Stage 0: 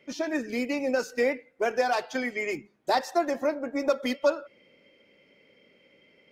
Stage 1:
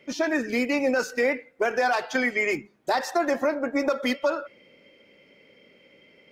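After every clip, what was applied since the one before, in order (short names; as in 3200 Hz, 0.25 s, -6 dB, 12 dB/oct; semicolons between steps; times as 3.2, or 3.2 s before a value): dynamic EQ 1500 Hz, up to +5 dB, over -43 dBFS, Q 0.96; limiter -19.5 dBFS, peak gain reduction 8.5 dB; gain +4.5 dB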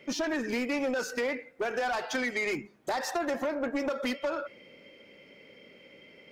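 compressor, threshold -26 dBFS, peak gain reduction 7 dB; soft clip -27 dBFS, distortion -13 dB; gain +2 dB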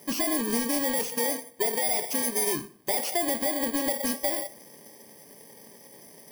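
FFT order left unsorted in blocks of 32 samples; on a send at -10 dB: reverb RT60 0.45 s, pre-delay 4 ms; on the sum: gain +3.5 dB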